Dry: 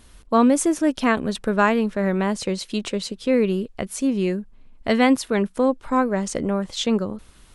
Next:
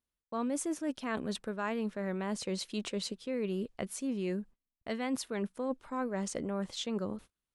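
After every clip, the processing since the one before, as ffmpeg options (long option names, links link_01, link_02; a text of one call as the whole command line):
ffmpeg -i in.wav -af "agate=range=-32dB:threshold=-39dB:ratio=16:detection=peak,lowshelf=frequency=64:gain=-10.5,areverse,acompressor=threshold=-25dB:ratio=6,areverse,volume=-6.5dB" out.wav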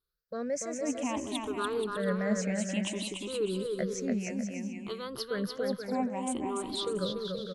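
ffmpeg -i in.wav -filter_complex "[0:a]afftfilt=real='re*pow(10,23/40*sin(2*PI*(0.61*log(max(b,1)*sr/1024/100)/log(2)-(0.59)*(pts-256)/sr)))':imag='im*pow(10,23/40*sin(2*PI*(0.61*log(max(b,1)*sr/1024/100)/log(2)-(0.59)*(pts-256)/sr)))':win_size=1024:overlap=0.75,asplit=2[link_01][link_02];[link_02]aecho=0:1:290|478.5|601|680.7|732.4:0.631|0.398|0.251|0.158|0.1[link_03];[link_01][link_03]amix=inputs=2:normalize=0,volume=-4dB" out.wav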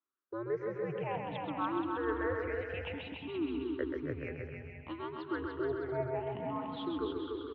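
ffmpeg -i in.wav -filter_complex "[0:a]acrossover=split=400 2500:gain=0.158 1 0.158[link_01][link_02][link_03];[link_01][link_02][link_03]amix=inputs=3:normalize=0,highpass=frequency=180:width_type=q:width=0.5412,highpass=frequency=180:width_type=q:width=1.307,lowpass=frequency=3600:width_type=q:width=0.5176,lowpass=frequency=3600:width_type=q:width=0.7071,lowpass=frequency=3600:width_type=q:width=1.932,afreqshift=-120,aecho=1:1:132|264|396|528|660:0.562|0.225|0.09|0.036|0.0144" out.wav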